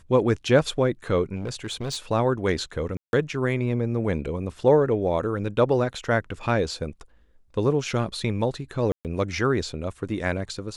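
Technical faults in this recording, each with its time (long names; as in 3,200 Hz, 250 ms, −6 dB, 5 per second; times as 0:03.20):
0:01.35–0:01.97: clipping −25 dBFS
0:02.97–0:03.13: drop-out 161 ms
0:08.92–0:09.05: drop-out 128 ms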